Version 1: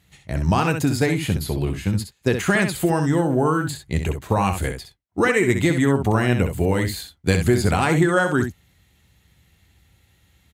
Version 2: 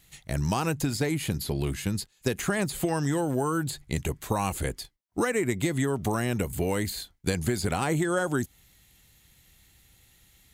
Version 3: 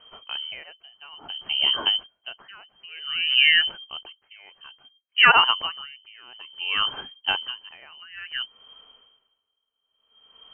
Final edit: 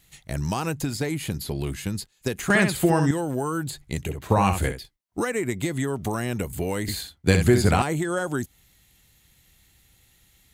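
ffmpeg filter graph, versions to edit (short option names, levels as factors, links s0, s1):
-filter_complex "[0:a]asplit=3[s0][s1][s2];[1:a]asplit=4[s3][s4][s5][s6];[s3]atrim=end=2.502[s7];[s0]atrim=start=2.498:end=3.112[s8];[s4]atrim=start=3.108:end=4.26[s9];[s1]atrim=start=4.02:end=4.9[s10];[s5]atrim=start=4.66:end=6.882[s11];[s2]atrim=start=6.878:end=7.822[s12];[s6]atrim=start=7.818[s13];[s7][s8]acrossfade=d=0.004:c1=hsin:c2=hsin[s14];[s14][s9]acrossfade=d=0.004:c1=hsin:c2=hsin[s15];[s15][s10]acrossfade=d=0.24:c1=tri:c2=tri[s16];[s16][s11]acrossfade=d=0.24:c1=tri:c2=tri[s17];[s17][s12]acrossfade=d=0.004:c1=hsin:c2=hsin[s18];[s18][s13]acrossfade=d=0.004:c1=hsin:c2=hsin"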